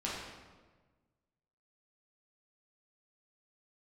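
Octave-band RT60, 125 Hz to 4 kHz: 1.8 s, 1.6 s, 1.5 s, 1.3 s, 1.1 s, 0.95 s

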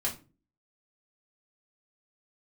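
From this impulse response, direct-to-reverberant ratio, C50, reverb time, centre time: -5.0 dB, 12.0 dB, 0.35 s, 17 ms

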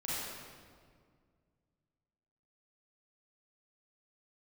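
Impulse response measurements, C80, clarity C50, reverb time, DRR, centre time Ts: -2.0 dB, -5.0 dB, 2.0 s, -9.5 dB, 141 ms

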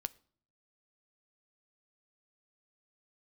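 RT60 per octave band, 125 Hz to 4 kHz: 0.85 s, 0.75 s, 0.55 s, 0.50 s, 0.40 s, 0.40 s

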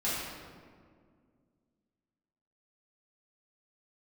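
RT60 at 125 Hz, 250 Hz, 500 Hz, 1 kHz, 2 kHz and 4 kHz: 2.6 s, 2.8 s, 2.2 s, 1.8 s, 1.4 s, 1.0 s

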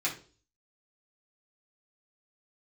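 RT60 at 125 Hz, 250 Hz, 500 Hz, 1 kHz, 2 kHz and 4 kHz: 0.60 s, 0.50 s, 0.45 s, 0.35 s, 0.30 s, 0.40 s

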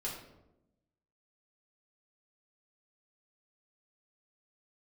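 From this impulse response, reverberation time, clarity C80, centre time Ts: 0.95 s, 7.5 dB, 40 ms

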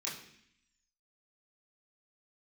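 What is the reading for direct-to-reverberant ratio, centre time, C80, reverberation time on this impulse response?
-7.0 dB, 38 ms, 9.5 dB, 0.65 s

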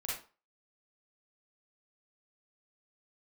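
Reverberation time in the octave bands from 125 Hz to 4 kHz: 0.30 s, 0.30 s, 0.35 s, 0.35 s, 0.30 s, 0.30 s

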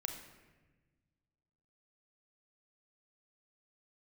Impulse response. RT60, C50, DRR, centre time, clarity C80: 1.3 s, 6.0 dB, 3.5 dB, 30 ms, 8.0 dB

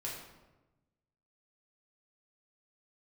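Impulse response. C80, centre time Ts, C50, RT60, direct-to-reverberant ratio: 5.0 dB, 53 ms, 2.5 dB, 1.1 s, -5.0 dB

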